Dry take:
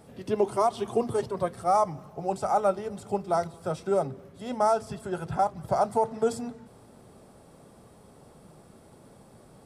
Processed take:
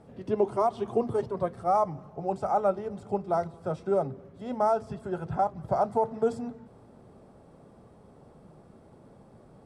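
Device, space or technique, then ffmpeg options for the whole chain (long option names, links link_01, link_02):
through cloth: -af "lowpass=9300,highshelf=frequency=2200:gain=-12"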